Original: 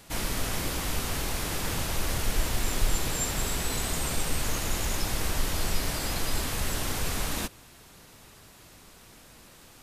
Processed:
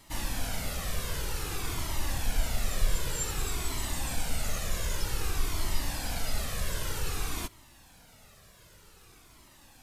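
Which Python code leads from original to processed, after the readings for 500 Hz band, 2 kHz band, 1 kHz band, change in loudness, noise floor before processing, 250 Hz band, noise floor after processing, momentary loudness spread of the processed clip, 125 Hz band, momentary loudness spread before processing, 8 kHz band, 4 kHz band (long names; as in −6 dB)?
−5.0 dB, −4.0 dB, −4.5 dB, −4.0 dB, −53 dBFS, −6.0 dB, −57 dBFS, 2 LU, −2.5 dB, 2 LU, −4.5 dB, −4.5 dB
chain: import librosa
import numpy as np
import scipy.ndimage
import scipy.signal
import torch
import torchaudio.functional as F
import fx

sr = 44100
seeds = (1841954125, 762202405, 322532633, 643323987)

y = fx.dmg_noise_colour(x, sr, seeds[0], colour='pink', level_db=-66.0)
y = fx.comb_cascade(y, sr, direction='falling', hz=0.53)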